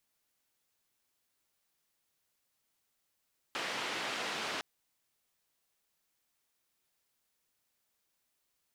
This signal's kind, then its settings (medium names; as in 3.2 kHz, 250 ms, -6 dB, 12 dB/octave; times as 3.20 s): noise band 240–3100 Hz, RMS -37.5 dBFS 1.06 s